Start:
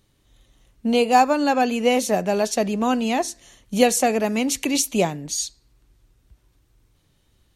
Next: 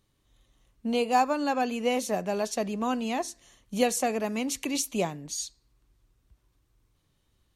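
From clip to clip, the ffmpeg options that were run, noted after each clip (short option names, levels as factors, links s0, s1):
-af "equalizer=f=1100:t=o:w=0.28:g=4.5,volume=0.398"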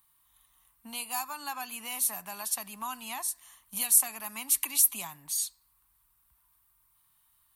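-filter_complex "[0:a]aexciter=amount=8.6:drive=5.6:freq=9000,acrossover=split=170|3000[s0][s1][s2];[s1]acompressor=threshold=0.02:ratio=6[s3];[s0][s3][s2]amix=inputs=3:normalize=0,lowshelf=f=690:t=q:w=3:g=-12,volume=0.891"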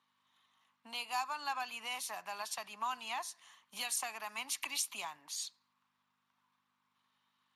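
-af "aeval=exprs='val(0)+0.000501*(sin(2*PI*50*n/s)+sin(2*PI*2*50*n/s)/2+sin(2*PI*3*50*n/s)/3+sin(2*PI*4*50*n/s)/4+sin(2*PI*5*50*n/s)/5)':c=same,highpass=450,lowpass=5700" -ar 32000 -c:a libspeex -b:a 36k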